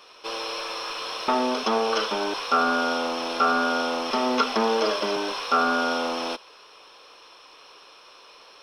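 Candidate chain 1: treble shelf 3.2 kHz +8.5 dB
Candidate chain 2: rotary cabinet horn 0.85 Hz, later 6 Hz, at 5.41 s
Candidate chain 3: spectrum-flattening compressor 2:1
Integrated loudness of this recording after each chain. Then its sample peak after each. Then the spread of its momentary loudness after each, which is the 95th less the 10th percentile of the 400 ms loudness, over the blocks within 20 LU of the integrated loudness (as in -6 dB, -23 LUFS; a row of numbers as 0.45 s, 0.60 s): -22.5 LUFS, -27.5 LUFS, -23.0 LUFS; -7.0 dBFS, -8.5 dBFS, -8.0 dBFS; 6 LU, 9 LU, 11 LU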